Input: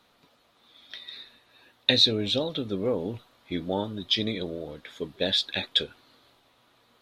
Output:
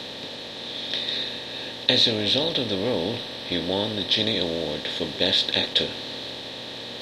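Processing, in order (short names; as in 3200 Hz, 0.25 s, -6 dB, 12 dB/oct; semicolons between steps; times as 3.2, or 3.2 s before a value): per-bin compression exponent 0.4; 2.22–4.19 notch 6800 Hz, Q 6.9; gain -2 dB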